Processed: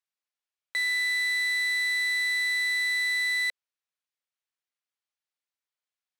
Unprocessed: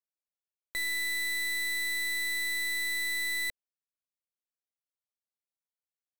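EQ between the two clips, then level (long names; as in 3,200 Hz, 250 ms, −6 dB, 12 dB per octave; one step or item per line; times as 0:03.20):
resonant band-pass 2,200 Hz, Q 0.52
+6.0 dB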